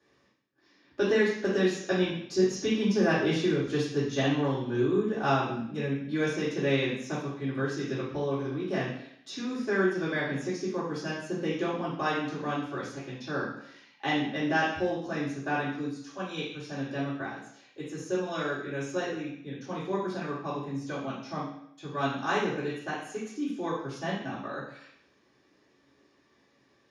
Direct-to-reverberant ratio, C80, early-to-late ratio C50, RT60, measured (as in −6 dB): −11.5 dB, 7.0 dB, 3.0 dB, 0.70 s